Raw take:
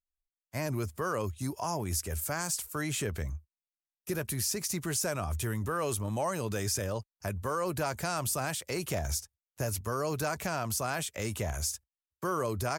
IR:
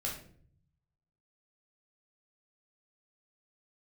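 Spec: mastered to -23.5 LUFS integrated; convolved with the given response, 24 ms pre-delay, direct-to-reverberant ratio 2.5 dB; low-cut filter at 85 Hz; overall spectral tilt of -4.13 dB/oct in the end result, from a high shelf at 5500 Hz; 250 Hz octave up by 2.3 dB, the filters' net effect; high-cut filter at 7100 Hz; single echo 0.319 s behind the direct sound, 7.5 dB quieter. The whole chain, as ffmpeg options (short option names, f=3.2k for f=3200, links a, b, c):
-filter_complex "[0:a]highpass=85,lowpass=7.1k,equalizer=f=250:t=o:g=3.5,highshelf=f=5.5k:g=8,aecho=1:1:319:0.422,asplit=2[a][b];[1:a]atrim=start_sample=2205,adelay=24[c];[b][c]afir=irnorm=-1:irlink=0,volume=-4.5dB[d];[a][d]amix=inputs=2:normalize=0,volume=6dB"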